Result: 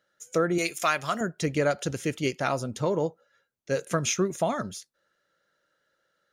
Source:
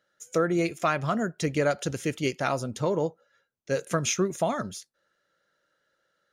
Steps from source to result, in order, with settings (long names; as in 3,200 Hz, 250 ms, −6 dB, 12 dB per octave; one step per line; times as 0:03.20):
0:00.58–0:01.21: spectral tilt +3.5 dB per octave